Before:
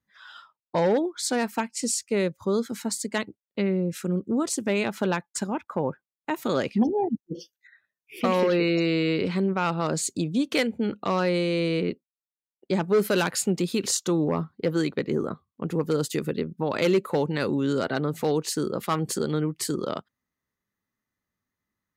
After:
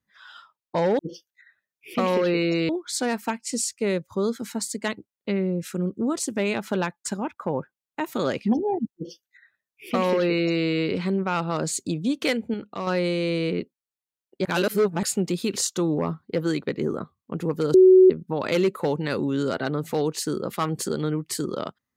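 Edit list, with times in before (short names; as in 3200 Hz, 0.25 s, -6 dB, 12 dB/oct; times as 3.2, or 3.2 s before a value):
7.25–8.95 copy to 0.99
10.84–11.17 gain -5.5 dB
12.75–13.33 reverse
16.04–16.4 bleep 373 Hz -9 dBFS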